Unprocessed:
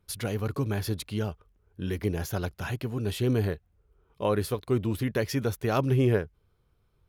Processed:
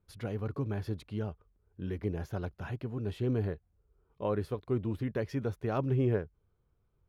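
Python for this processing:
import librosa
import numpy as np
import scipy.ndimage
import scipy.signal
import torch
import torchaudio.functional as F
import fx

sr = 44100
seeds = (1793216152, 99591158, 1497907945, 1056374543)

y = fx.lowpass(x, sr, hz=1300.0, slope=6)
y = y * librosa.db_to_amplitude(-5.0)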